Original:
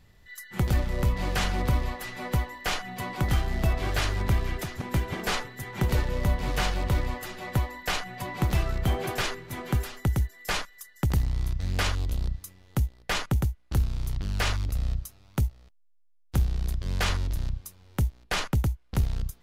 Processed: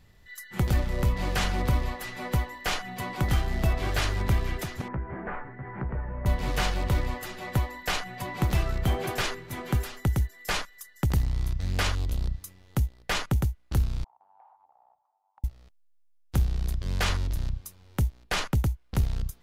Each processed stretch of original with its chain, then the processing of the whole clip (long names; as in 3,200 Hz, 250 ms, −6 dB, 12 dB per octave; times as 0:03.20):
0:04.88–0:06.26: Butterworth low-pass 1,900 Hz + double-tracking delay 15 ms −4 dB + downward compressor 2 to 1, threshold −35 dBFS
0:14.04–0:15.44: flat-topped band-pass 840 Hz, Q 4.7 + downward compressor, threshold −54 dBFS
whole clip: no processing